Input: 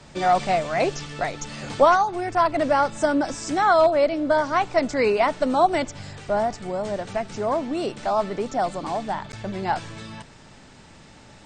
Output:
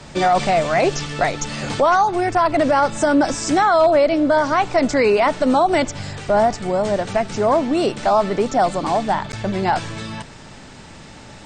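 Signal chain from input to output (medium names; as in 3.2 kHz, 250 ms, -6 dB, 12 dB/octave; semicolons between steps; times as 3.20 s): peak limiter -16 dBFS, peak gain reduction 9.5 dB; trim +8 dB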